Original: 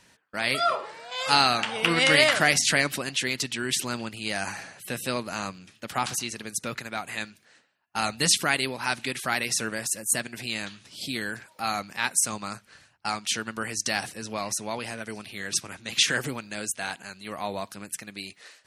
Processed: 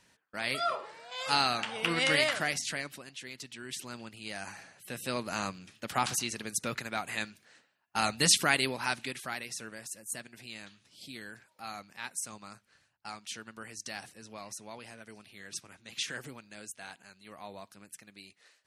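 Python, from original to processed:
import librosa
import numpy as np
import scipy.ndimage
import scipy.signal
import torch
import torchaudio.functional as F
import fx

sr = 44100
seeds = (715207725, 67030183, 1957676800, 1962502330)

y = fx.gain(x, sr, db=fx.line((2.12, -7.0), (3.14, -17.5), (4.15, -10.5), (4.77, -10.5), (5.33, -2.0), (8.74, -2.0), (9.5, -13.5)))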